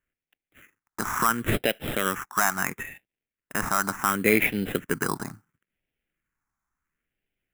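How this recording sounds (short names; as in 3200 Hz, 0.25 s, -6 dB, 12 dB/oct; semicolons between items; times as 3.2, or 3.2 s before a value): aliases and images of a low sample rate 4500 Hz, jitter 0%; phasing stages 4, 0.72 Hz, lowest notch 500–1100 Hz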